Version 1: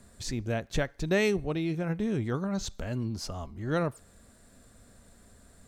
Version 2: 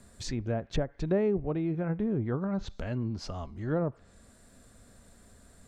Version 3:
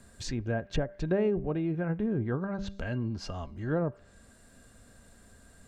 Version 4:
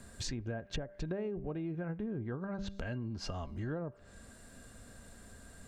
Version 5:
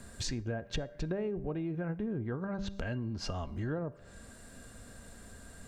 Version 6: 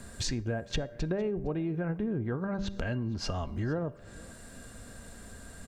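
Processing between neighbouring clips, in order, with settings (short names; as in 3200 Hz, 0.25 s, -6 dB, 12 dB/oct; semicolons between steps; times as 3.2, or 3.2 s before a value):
treble ducked by the level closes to 810 Hz, closed at -24.5 dBFS
de-hum 196.5 Hz, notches 3; small resonant body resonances 1600/2800 Hz, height 13 dB, ringing for 95 ms
compressor 6:1, threshold -38 dBFS, peak gain reduction 14 dB; gain +2.5 dB
resonator 470 Hz, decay 0.46 s, mix 40%; on a send at -23 dB: reverb RT60 1.0 s, pre-delay 37 ms; on the sum: gain +7 dB
echo 0.459 s -23.5 dB; gain +3.5 dB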